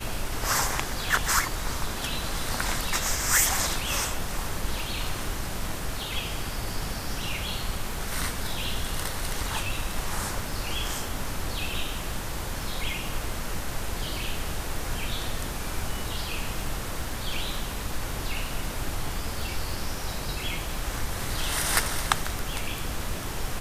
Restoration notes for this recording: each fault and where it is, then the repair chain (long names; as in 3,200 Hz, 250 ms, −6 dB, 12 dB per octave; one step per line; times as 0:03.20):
surface crackle 24 per second −36 dBFS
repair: click removal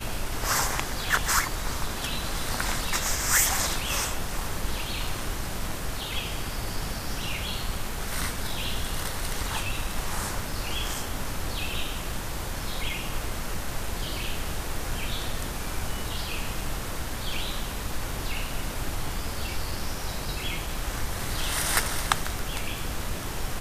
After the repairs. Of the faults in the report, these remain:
none of them is left